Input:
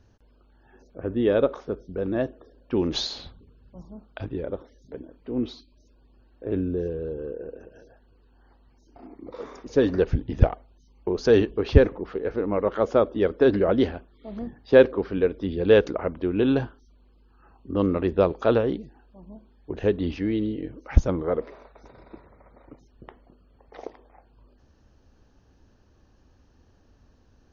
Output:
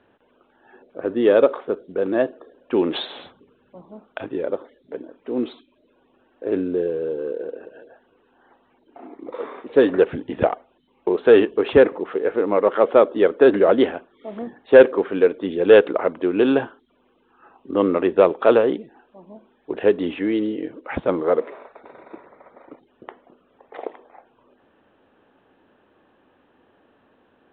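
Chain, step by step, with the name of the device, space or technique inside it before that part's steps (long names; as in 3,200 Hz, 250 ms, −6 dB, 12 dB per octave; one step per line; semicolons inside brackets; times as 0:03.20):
telephone (band-pass filter 330–3,400 Hz; soft clipping −9 dBFS, distortion −20 dB; level +8 dB; mu-law 64 kbit/s 8,000 Hz)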